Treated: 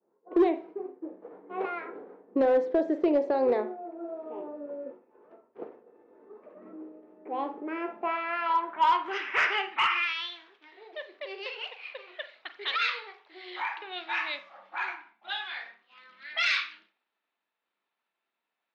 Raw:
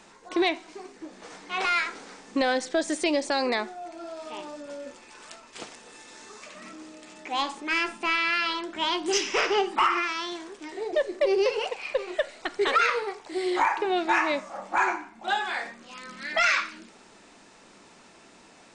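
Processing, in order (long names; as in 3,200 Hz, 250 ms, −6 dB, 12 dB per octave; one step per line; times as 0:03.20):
downward expander −41 dBFS
band-pass filter sweep 430 Hz → 3,700 Hz, 0:07.62–0:10.32
on a send at −10.5 dB: convolution reverb, pre-delay 41 ms
on the sum: low-pass that shuts in the quiet parts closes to 1,400 Hz, open at −24 dBFS
dynamic equaliser 920 Hz, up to +6 dB, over −43 dBFS, Q 4.7
in parallel at −5 dB: wave folding −24.5 dBFS
on the sum: high-frequency loss of the air 86 metres
level +3 dB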